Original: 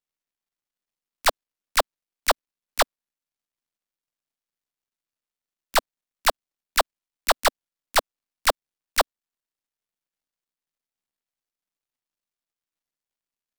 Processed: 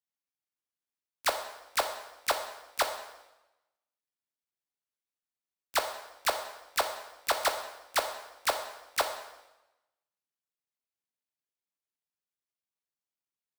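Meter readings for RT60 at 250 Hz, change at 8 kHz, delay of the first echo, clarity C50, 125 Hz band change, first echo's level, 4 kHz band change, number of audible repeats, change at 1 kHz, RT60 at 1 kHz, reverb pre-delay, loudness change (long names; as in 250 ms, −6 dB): 1.0 s, −7.0 dB, no echo audible, 8.5 dB, can't be measured, no echo audible, −7.0 dB, no echo audible, −7.0 dB, 0.95 s, 5 ms, −7.5 dB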